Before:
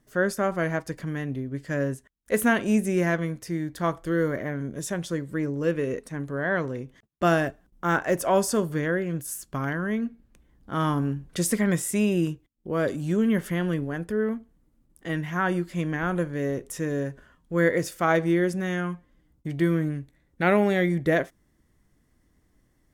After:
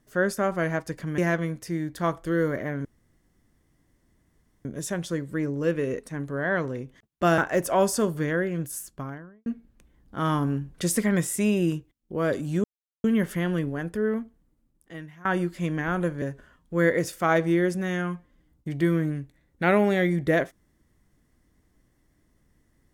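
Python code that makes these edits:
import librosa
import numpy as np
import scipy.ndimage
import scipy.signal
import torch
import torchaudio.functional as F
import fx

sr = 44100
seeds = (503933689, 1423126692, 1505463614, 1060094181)

y = fx.studio_fade_out(x, sr, start_s=9.24, length_s=0.77)
y = fx.edit(y, sr, fx.cut(start_s=1.18, length_s=1.8),
    fx.insert_room_tone(at_s=4.65, length_s=1.8),
    fx.cut(start_s=7.38, length_s=0.55),
    fx.insert_silence(at_s=13.19, length_s=0.4),
    fx.fade_out_to(start_s=14.31, length_s=1.09, floor_db=-22.5),
    fx.cut(start_s=16.37, length_s=0.64), tone=tone)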